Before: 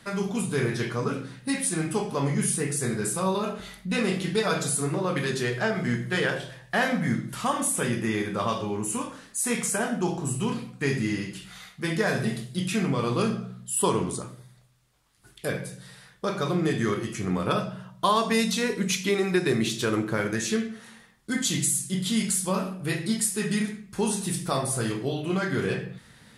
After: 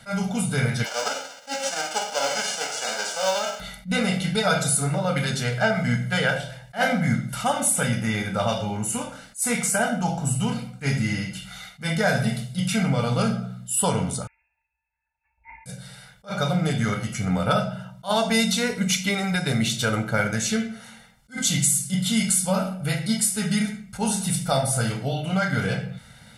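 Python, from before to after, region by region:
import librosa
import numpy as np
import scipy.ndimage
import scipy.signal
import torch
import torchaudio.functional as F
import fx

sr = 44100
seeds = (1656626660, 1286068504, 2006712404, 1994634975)

y = fx.envelope_flatten(x, sr, power=0.3, at=(0.84, 3.59), fade=0.02)
y = fx.cabinet(y, sr, low_hz=330.0, low_slope=24, high_hz=6800.0, hz=(560.0, 2100.0, 3900.0), db=(6, -7, -8), at=(0.84, 3.59), fade=0.02)
y = fx.quant_companded(y, sr, bits=6, at=(0.84, 3.59), fade=0.02)
y = fx.chain(y, sr, fx.peak_eq(hz=570.0, db=10.5, octaves=1.9),
    fx.comb_fb(f0_hz=850.0, decay_s=0.16, harmonics='all', damping=0.0, mix_pct=100),
    fx.freq_invert(carrier_hz=2600), at=(14.27, 15.66))
y = y + 0.98 * np.pad(y, (int(1.4 * sr / 1000.0), 0))[:len(y)]
y = fx.attack_slew(y, sr, db_per_s=310.0)
y = y * librosa.db_to_amplitude(1.5)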